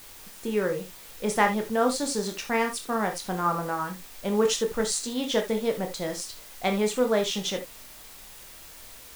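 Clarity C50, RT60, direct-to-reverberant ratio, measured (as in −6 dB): 11.0 dB, non-exponential decay, 3.5 dB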